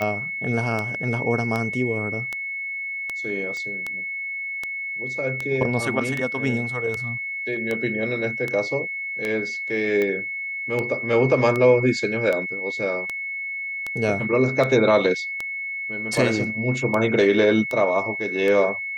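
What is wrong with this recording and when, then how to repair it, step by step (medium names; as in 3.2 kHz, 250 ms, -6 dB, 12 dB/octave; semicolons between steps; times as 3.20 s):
tick 78 rpm -13 dBFS
whine 2.2 kHz -27 dBFS
3.57 s: pop -21 dBFS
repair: de-click; band-stop 2.2 kHz, Q 30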